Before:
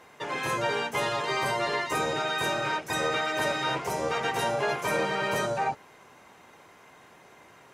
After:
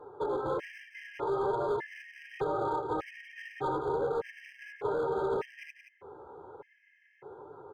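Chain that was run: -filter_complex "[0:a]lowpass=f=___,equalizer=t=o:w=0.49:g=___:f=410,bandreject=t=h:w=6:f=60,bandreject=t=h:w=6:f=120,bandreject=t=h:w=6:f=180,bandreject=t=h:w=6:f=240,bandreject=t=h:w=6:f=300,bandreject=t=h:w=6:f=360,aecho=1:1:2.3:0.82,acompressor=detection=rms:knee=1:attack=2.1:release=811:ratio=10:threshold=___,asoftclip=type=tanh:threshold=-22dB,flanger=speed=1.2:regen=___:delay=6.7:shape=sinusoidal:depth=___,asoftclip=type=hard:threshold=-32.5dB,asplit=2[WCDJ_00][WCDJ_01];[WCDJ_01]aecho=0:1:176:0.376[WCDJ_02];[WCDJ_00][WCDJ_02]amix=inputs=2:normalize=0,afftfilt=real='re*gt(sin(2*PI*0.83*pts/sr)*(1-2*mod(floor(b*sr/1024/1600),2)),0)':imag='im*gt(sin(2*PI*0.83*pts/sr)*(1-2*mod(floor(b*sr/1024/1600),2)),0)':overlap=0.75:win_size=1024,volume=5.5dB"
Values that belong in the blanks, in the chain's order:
1.1k, 7, -24dB, 18, 9.4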